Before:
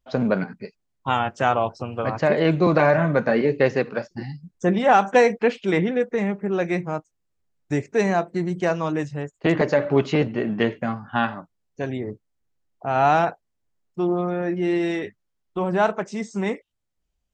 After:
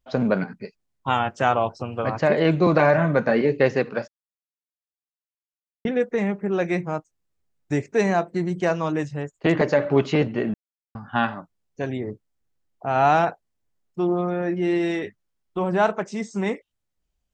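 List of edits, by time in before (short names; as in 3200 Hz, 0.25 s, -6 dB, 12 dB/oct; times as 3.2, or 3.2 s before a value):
4.08–5.85 mute
10.54–10.95 mute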